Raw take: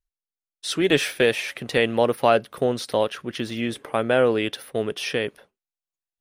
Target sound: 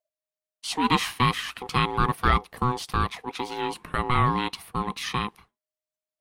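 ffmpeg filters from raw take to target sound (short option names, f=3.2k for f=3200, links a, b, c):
-af "aeval=exprs='val(0)*sin(2*PI*620*n/s)':c=same,bandreject=f=560:w=12"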